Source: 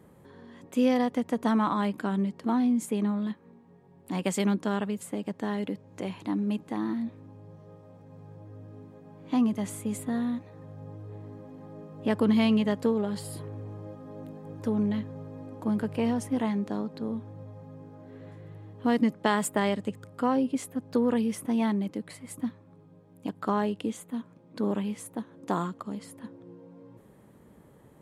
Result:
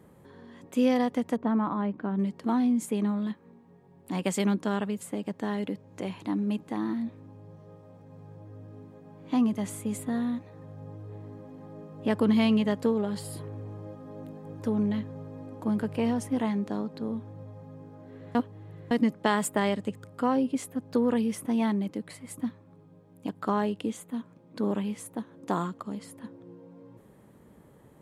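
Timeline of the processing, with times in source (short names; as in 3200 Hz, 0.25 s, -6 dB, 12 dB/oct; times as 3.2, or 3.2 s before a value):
1.36–2.19 tape spacing loss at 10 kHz 42 dB
18.35–18.91 reverse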